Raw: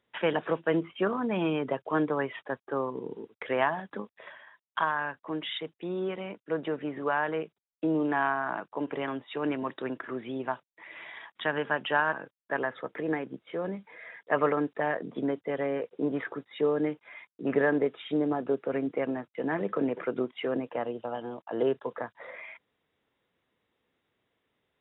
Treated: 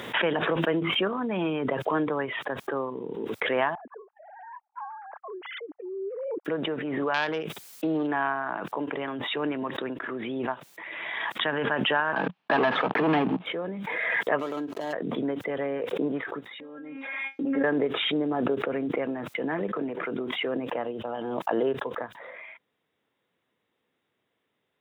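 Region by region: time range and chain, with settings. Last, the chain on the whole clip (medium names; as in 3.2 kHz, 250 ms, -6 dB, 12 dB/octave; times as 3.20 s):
3.75–6.45 s: formants replaced by sine waves + four-pole ladder low-pass 1 kHz, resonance 30%
7.14–8.07 s: self-modulated delay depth 0.1 ms + treble shelf 2.4 kHz +9 dB
12.16–13.46 s: waveshaping leveller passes 5 + cabinet simulation 180–2900 Hz, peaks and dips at 180 Hz +4 dB, 360 Hz -5 dB, 520 Hz -8 dB, 820 Hz +4 dB, 1.4 kHz -5 dB, 2 kHz -7 dB
14.39–14.93 s: median filter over 25 samples + comb 3.1 ms, depth 39% + compression 2:1, threshold -33 dBFS
16.60–17.64 s: distance through air 210 m + feedback comb 270 Hz, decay 0.19 s, mix 100%
19.76–20.43 s: compression 1.5:1, threshold -32 dBFS + band-stop 530 Hz, Q 11
whole clip: high-pass 110 Hz; swell ahead of each attack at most 23 dB/s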